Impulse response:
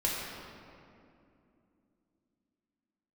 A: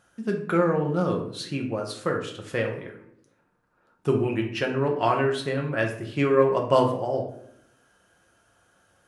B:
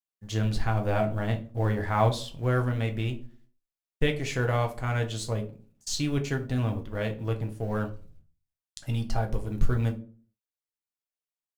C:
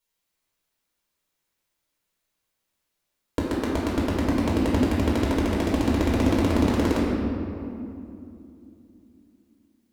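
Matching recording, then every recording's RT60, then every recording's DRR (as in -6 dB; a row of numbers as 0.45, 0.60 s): C; 0.75, 0.40, 2.6 s; 1.0, 3.5, -6.0 dB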